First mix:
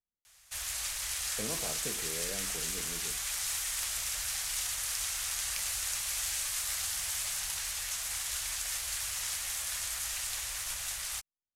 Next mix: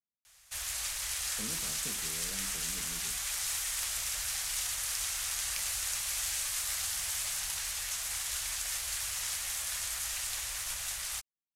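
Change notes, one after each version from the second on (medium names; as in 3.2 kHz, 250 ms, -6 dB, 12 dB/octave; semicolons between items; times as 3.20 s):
speech: add band-pass filter 190 Hz, Q 1.5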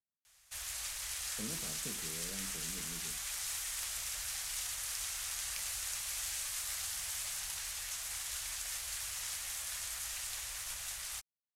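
background -5.0 dB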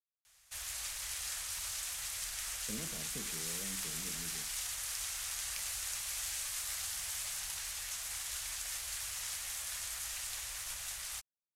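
speech: entry +1.30 s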